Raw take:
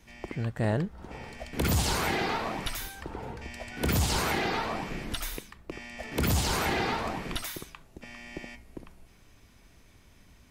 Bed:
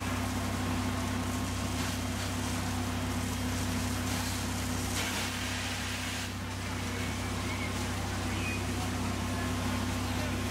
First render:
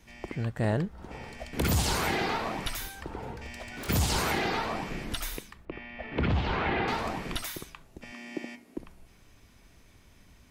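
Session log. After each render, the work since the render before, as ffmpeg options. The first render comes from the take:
ffmpeg -i in.wav -filter_complex "[0:a]asplit=3[link_01][link_02][link_03];[link_01]afade=type=out:start_time=3.33:duration=0.02[link_04];[link_02]aeval=exprs='0.0211*(abs(mod(val(0)/0.0211+3,4)-2)-1)':channel_layout=same,afade=type=in:start_time=3.33:duration=0.02,afade=type=out:start_time=3.88:duration=0.02[link_05];[link_03]afade=type=in:start_time=3.88:duration=0.02[link_06];[link_04][link_05][link_06]amix=inputs=3:normalize=0,asettb=1/sr,asplit=3[link_07][link_08][link_09];[link_07]atrim=end=5.654[link_10];[link_08]atrim=start=5.65:end=6.88,asetpts=PTS-STARTPTS,afade=type=in:duration=0.004:curve=qsin,afade=type=out:start_time=1.226:duration=0.004:curve=qsin,lowpass=frequency=3100:width=0.5412,lowpass=frequency=3100:width=1.3066[link_11];[link_09]atrim=start=6.876[link_12];[link_10][link_11]acrossfade=duration=0.004:curve1=hsin:curve2=qsin[link_13];[link_13][link_12]acrossfade=duration=0.004:curve1=qsin:curve2=hsin,asettb=1/sr,asplit=3[link_14][link_15][link_16];[link_14]atrim=end=8.124[link_17];[link_15]atrim=start=8.12:end=8.78,asetpts=PTS-STARTPTS,afade=type=in:duration=0.004:curve=qsin,afade=type=out:start_time=0.656:duration=0.004:curve=qsin,highpass=frequency=260:width_type=q:width=2.4[link_18];[link_16]atrim=start=8.776[link_19];[link_17][link_18]acrossfade=duration=0.004:curve1=hsin:curve2=qsin[link_20];[link_20][link_19]acrossfade=duration=0.004:curve1=qsin:curve2=hsin" out.wav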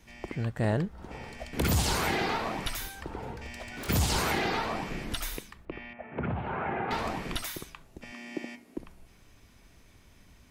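ffmpeg -i in.wav -filter_complex "[0:a]asettb=1/sr,asplit=3[link_01][link_02][link_03];[link_01]atrim=end=5.934[link_04];[link_02]atrim=start=5.93:end=6.91,asetpts=PTS-STARTPTS,afade=type=in:duration=0.004:curve=qsin,afade=type=out:start_time=0.976:duration=0.004:curve=qsin,highpass=130,equalizer=frequency=190:width_type=q:width=4:gain=-3,equalizer=frequency=300:width_type=q:width=4:gain=-9,equalizer=frequency=470:width_type=q:width=4:gain=-4,equalizer=frequency=1100:width_type=q:width=4:gain=-4,equalizer=frequency=1900:width_type=q:width=4:gain=-7,lowpass=frequency=2000:width=0.5412,lowpass=frequency=2000:width=1.3066[link_05];[link_03]atrim=start=6.906[link_06];[link_04][link_05]acrossfade=duration=0.004:curve1=hsin:curve2=qsin[link_07];[link_07][link_06]acrossfade=duration=0.004:curve1=qsin:curve2=hsin" out.wav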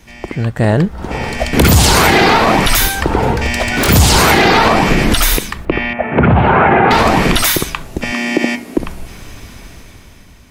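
ffmpeg -i in.wav -af "dynaudnorm=framelen=310:gausssize=7:maxgain=12.5dB,alimiter=level_in=13.5dB:limit=-1dB:release=50:level=0:latency=1" out.wav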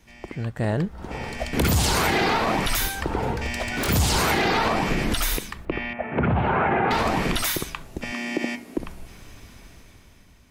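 ffmpeg -i in.wav -af "volume=-12dB" out.wav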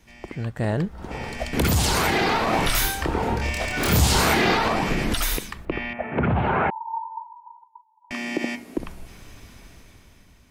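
ffmpeg -i in.wav -filter_complex "[0:a]asettb=1/sr,asplit=3[link_01][link_02][link_03];[link_01]atrim=end=2.504[link_04];[link_02]atrim=start=2.5:end=4.55,asetpts=PTS-STARTPTS,afade=type=in:duration=0.004:curve=qsin,afade=type=out:start_time=2.046:duration=0.004:curve=qsin,asplit=2[link_05][link_06];[link_06]adelay=27,volume=-2dB[link_07];[link_05][link_07]amix=inputs=2:normalize=0,atrim=end_sample=90405[link_08];[link_03]atrim=start=4.546[link_09];[link_04][link_08]acrossfade=duration=0.004:curve1=hsin:curve2=qsin[link_10];[link_10][link_09]acrossfade=duration=0.004:curve1=qsin:curve2=hsin,asettb=1/sr,asplit=3[link_11][link_12][link_13];[link_11]atrim=end=6.704[link_14];[link_12]atrim=start=6.7:end=8.11,asetpts=PTS-STARTPTS,afade=type=in:duration=0.004:curve=qsin,afade=type=out:start_time=1.406:duration=0.004:curve=qsin,asuperpass=centerf=930:order=12:qfactor=7.3[link_15];[link_13]atrim=start=8.106[link_16];[link_14][link_15]acrossfade=duration=0.004:curve1=hsin:curve2=qsin[link_17];[link_17][link_16]acrossfade=duration=0.004:curve1=qsin:curve2=hsin" out.wav

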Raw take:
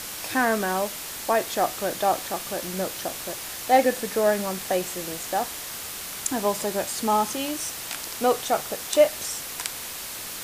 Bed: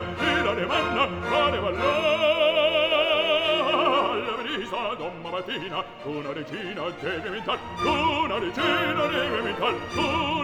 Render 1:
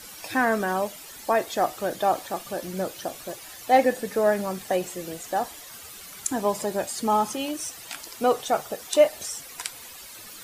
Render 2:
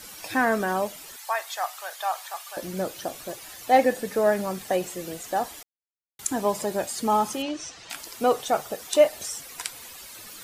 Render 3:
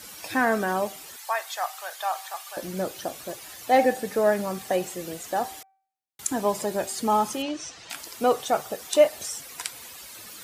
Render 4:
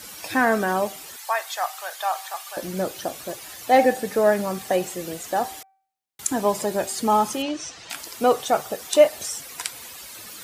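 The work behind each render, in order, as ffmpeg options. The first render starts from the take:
ffmpeg -i in.wav -af "afftdn=noise_reduction=12:noise_floor=-36" out.wav
ffmpeg -i in.wav -filter_complex "[0:a]asettb=1/sr,asplit=3[link_01][link_02][link_03];[link_01]atrim=end=1.164[link_04];[link_02]atrim=start=1.16:end=2.57,asetpts=PTS-STARTPTS,afade=type=in:duration=0.004:curve=qsin,afade=type=out:start_time=1.406:duration=0.004:curve=qsin,highpass=frequency=840:width=0.5412,highpass=frequency=840:width=1.3066[link_05];[link_03]atrim=start=2.566[link_06];[link_04][link_05]acrossfade=duration=0.004:curve1=hsin:curve2=qsin[link_07];[link_07][link_06]acrossfade=duration=0.004:curve1=qsin:curve2=hsin,asettb=1/sr,asplit=3[link_08][link_09][link_10];[link_08]atrim=end=7.424[link_11];[link_09]atrim=start=7.42:end=7.9,asetpts=PTS-STARTPTS,afade=type=in:duration=0.004:curve=qsin,afade=type=out:start_time=0.476:duration=0.004:curve=qsin,lowpass=frequency=6200:width=0.5412,lowpass=frequency=6200:width=1.3066[link_12];[link_10]atrim=start=7.896[link_13];[link_11][link_12]acrossfade=duration=0.004:curve1=hsin:curve2=qsin[link_14];[link_14][link_13]acrossfade=duration=0.004:curve1=qsin:curve2=hsin,asplit=3[link_15][link_16][link_17];[link_15]atrim=end=5.63,asetpts=PTS-STARTPTS,afade=type=out:start_time=5.626:duration=0.004:curve=hsin[link_18];[link_16]atrim=start=5.63:end=6.19,asetpts=PTS-STARTPTS,volume=0[link_19];[link_17]atrim=start=6.19,asetpts=PTS-STARTPTS,afade=type=in:duration=0.004:curve=hsin[link_20];[link_18][link_19][link_20]concat=n=3:v=0:a=1" out.wav
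ffmpeg -i in.wav -af "highpass=48,bandreject=frequency=386.3:width_type=h:width=4,bandreject=frequency=772.6:width_type=h:width=4,bandreject=frequency=1158.9:width_type=h:width=4,bandreject=frequency=1545.2:width_type=h:width=4,bandreject=frequency=1931.5:width_type=h:width=4,bandreject=frequency=2317.8:width_type=h:width=4" out.wav
ffmpeg -i in.wav -af "volume=3dB" out.wav

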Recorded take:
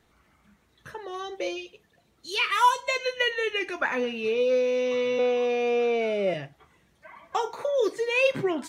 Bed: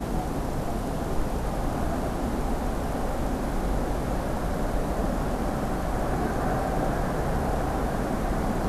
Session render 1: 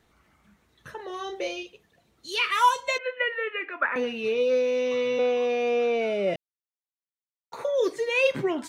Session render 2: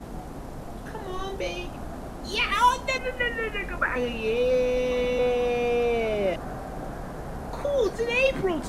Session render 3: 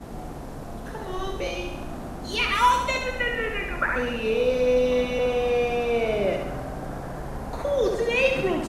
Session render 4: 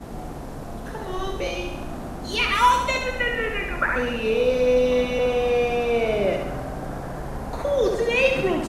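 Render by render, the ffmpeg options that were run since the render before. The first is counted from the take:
ffmpeg -i in.wav -filter_complex "[0:a]asettb=1/sr,asplit=3[link_01][link_02][link_03];[link_01]atrim=end=0.964[link_04];[link_02]atrim=start=0.96:end=1.63,asetpts=PTS-STARTPTS,afade=type=in:duration=0.004:curve=qsin,afade=type=out:start_time=0.666:duration=0.004:curve=qsin,asplit=2[link_05][link_06];[link_06]adelay=36,volume=-7dB[link_07];[link_05][link_07]amix=inputs=2:normalize=0,atrim=end_sample=29547[link_08];[link_03]atrim=start=1.626[link_09];[link_04][link_08]acrossfade=duration=0.004:curve1=hsin:curve2=qsin[link_10];[link_10][link_09]acrossfade=duration=0.004:curve1=qsin:curve2=hsin,asettb=1/sr,asplit=3[link_11][link_12][link_13];[link_11]atrim=end=2.984[link_14];[link_12]atrim=start=2.98:end=3.96,asetpts=PTS-STARTPTS,afade=type=in:duration=0.004:curve=qsin,afade=type=out:start_time=0.976:duration=0.004:curve=qsin,highpass=frequency=290:width=0.5412,highpass=frequency=290:width=1.3066,equalizer=frequency=370:width_type=q:width=4:gain=-9,equalizer=frequency=800:width_type=q:width=4:gain=-8,equalizer=frequency=1300:width_type=q:width=4:gain=6,lowpass=frequency=2400:width=0.5412,lowpass=frequency=2400:width=1.3066[link_15];[link_13]atrim=start=3.956[link_16];[link_14][link_15]acrossfade=duration=0.004:curve1=hsin:curve2=qsin[link_17];[link_17][link_16]acrossfade=duration=0.004:curve1=qsin:curve2=hsin,asplit=3[link_18][link_19][link_20];[link_18]atrim=end=6.36,asetpts=PTS-STARTPTS,afade=type=out:start_time=6.356:duration=0.004:curve=hsin[link_21];[link_19]atrim=start=6.36:end=7.52,asetpts=PTS-STARTPTS,volume=0[link_22];[link_20]atrim=start=7.52,asetpts=PTS-STARTPTS,afade=type=in:duration=0.004:curve=hsin[link_23];[link_21][link_22][link_23]concat=n=3:v=0:a=1" out.wav
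ffmpeg -i in.wav -i bed.wav -filter_complex "[1:a]volume=-9dB[link_01];[0:a][link_01]amix=inputs=2:normalize=0" out.wav
ffmpeg -i in.wav -af "aecho=1:1:68|136|204|272|340|408|476|544:0.531|0.308|0.179|0.104|0.0601|0.0348|0.0202|0.0117" out.wav
ffmpeg -i in.wav -af "volume=2dB" out.wav

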